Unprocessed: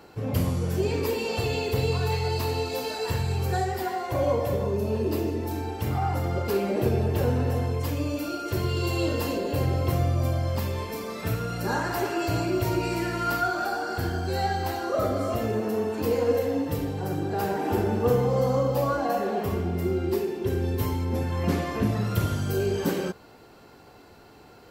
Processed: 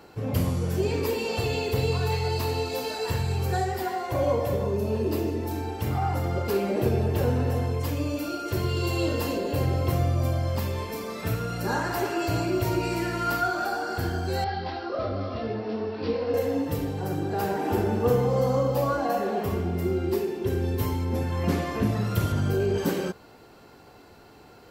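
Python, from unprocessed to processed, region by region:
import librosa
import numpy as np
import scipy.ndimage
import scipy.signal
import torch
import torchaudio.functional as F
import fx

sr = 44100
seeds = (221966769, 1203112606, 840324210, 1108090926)

y = fx.chain(x, sr, fx.resample_bad(factor=4, down='none', up='filtered'),
    fx.detune_double(cents=23), at=(14.44, 16.34))
y = fx.chain(y, sr, fx.high_shelf(hz=3700.0, db=-9.5),
    fx.env_flatten(amount_pct=70), at=(22.32, 22.78))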